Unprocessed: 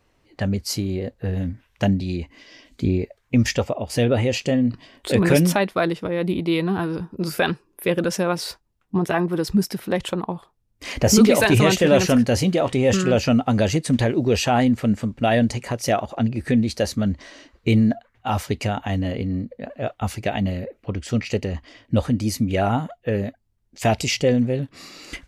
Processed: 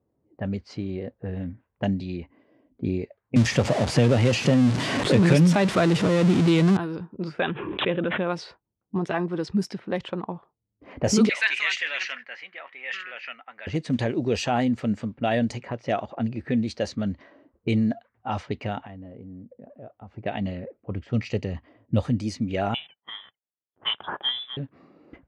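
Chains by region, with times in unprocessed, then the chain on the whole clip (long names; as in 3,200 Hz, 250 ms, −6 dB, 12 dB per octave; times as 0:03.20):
0:03.36–0:06.77: converter with a step at zero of −20 dBFS + parametric band 140 Hz +7.5 dB 1.2 octaves + multiband upward and downward compressor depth 70%
0:07.40–0:08.30: bad sample-rate conversion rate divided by 6×, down none, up filtered + background raised ahead of every attack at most 36 dB per second
0:11.29–0:13.67: high-pass with resonance 2,000 Hz, resonance Q 3 + high-frequency loss of the air 82 metres
0:18.86–0:20.17: downward compressor 2.5 to 1, threshold −38 dBFS + high-shelf EQ 2,100 Hz +8 dB
0:20.90–0:22.21: parametric band 110 Hz +6 dB 1.2 octaves + notch filter 1,500 Hz, Q 19
0:22.74–0:24.57: mu-law and A-law mismatch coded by A + high-pass filter 410 Hz + voice inversion scrambler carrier 3,700 Hz
whole clip: high-pass filter 100 Hz; low-pass that shuts in the quiet parts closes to 500 Hz, open at −16 dBFS; Bessel low-pass filter 6,700 Hz, order 8; level −5 dB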